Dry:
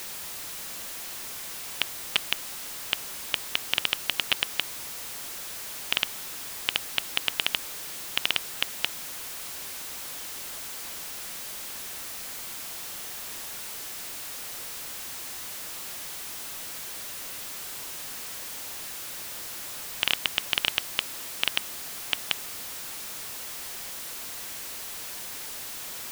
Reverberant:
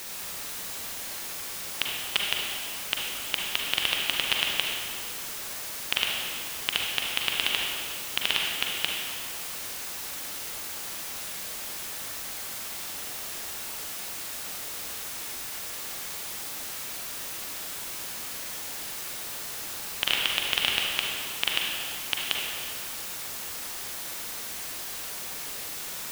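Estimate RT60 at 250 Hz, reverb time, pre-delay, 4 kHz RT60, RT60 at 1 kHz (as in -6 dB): 2.2 s, 2.2 s, 37 ms, 1.6 s, 2.2 s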